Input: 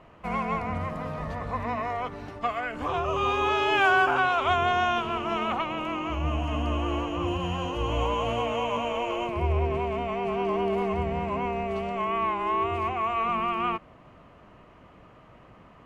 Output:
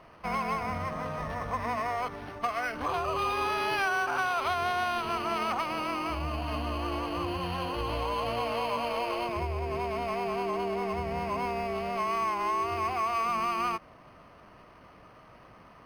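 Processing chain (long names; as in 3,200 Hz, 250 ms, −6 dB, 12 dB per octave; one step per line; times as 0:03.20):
running median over 9 samples
high-shelf EQ 6,000 Hz +10.5 dB
downward compressor, threshold −26 dBFS, peak gain reduction 9 dB
tilt shelving filter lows −4 dB, about 720 Hz
linearly interpolated sample-rate reduction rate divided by 6×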